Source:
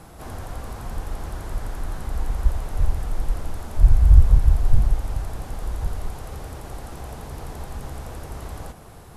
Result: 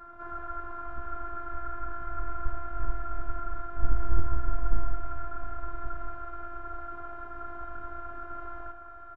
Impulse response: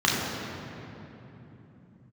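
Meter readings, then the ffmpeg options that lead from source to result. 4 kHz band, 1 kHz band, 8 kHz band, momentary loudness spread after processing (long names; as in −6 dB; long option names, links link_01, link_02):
below −20 dB, +2.5 dB, below −35 dB, 7 LU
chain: -filter_complex "[0:a]lowpass=frequency=1400:width_type=q:width=16,afftfilt=real='hypot(re,im)*cos(PI*b)':imag='0':win_size=512:overlap=0.75,asplit=2[link_01][link_02];[link_02]aecho=0:1:70|704:0.266|0.224[link_03];[link_01][link_03]amix=inputs=2:normalize=0,volume=-5.5dB"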